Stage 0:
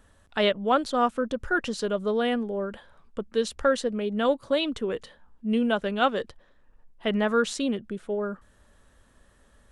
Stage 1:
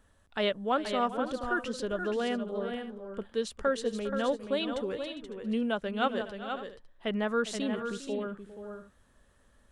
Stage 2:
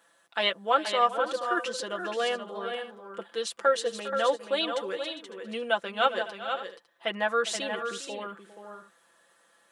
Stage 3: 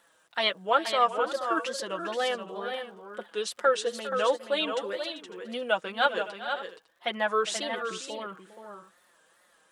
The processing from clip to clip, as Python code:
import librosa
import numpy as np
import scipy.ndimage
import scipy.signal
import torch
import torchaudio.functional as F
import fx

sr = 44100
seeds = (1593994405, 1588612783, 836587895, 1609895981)

y1 = fx.echo_multitap(x, sr, ms=(404, 478, 554), db=(-15.0, -7.5, -17.0))
y1 = y1 * 10.0 ** (-6.0 / 20.0)
y2 = scipy.signal.sosfilt(scipy.signal.bessel(2, 610.0, 'highpass', norm='mag', fs=sr, output='sos'), y1)
y2 = y2 + 0.76 * np.pad(y2, (int(5.9 * sr / 1000.0), 0))[:len(y2)]
y2 = y2 * 10.0 ** (5.0 / 20.0)
y3 = fx.wow_flutter(y2, sr, seeds[0], rate_hz=2.1, depth_cents=120.0)
y3 = fx.dmg_crackle(y3, sr, seeds[1], per_s=120.0, level_db=-56.0)